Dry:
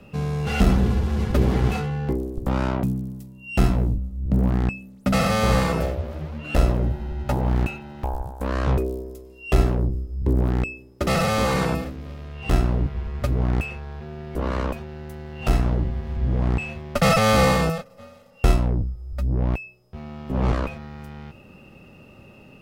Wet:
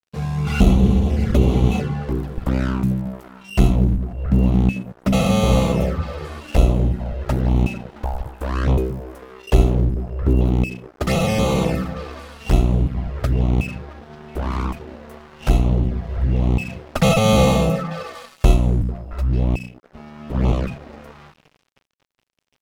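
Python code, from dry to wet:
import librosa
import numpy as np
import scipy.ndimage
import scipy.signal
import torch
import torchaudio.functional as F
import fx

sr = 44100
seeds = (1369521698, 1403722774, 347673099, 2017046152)

y = fx.echo_stepped(x, sr, ms=223, hz=190.0, octaves=1.4, feedback_pct=70, wet_db=-5)
y = fx.env_flanger(y, sr, rest_ms=8.9, full_db=-17.0)
y = np.sign(y) * np.maximum(np.abs(y) - 10.0 ** (-42.5 / 20.0), 0.0)
y = y * 10.0 ** (4.5 / 20.0)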